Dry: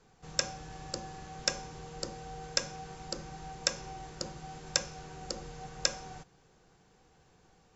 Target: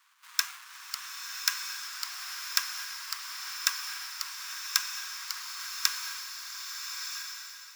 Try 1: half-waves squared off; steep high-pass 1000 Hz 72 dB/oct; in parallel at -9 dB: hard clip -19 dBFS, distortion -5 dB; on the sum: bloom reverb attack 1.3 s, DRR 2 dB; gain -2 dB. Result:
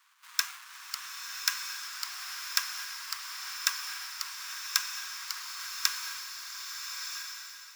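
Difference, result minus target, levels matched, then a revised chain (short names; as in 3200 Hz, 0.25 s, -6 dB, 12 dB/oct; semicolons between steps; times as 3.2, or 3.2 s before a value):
hard clip: distortion +11 dB
half-waves squared off; steep high-pass 1000 Hz 72 dB/oct; in parallel at -9 dB: hard clip -8.5 dBFS, distortion -15 dB; on the sum: bloom reverb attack 1.3 s, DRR 2 dB; gain -2 dB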